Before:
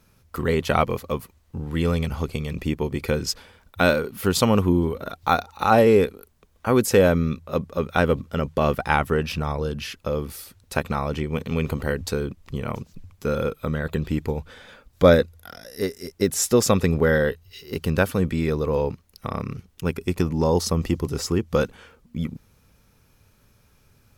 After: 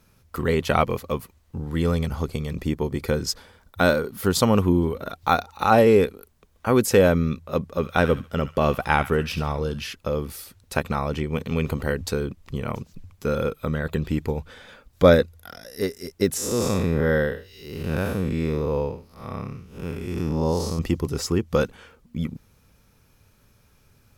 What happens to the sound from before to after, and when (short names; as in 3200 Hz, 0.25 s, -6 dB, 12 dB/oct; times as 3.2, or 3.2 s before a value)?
1.57–4.54 bell 2600 Hz -6 dB 0.5 oct
7.7–9.87 thin delay 70 ms, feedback 30%, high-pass 1500 Hz, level -10 dB
16.37–20.79 time blur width 0.171 s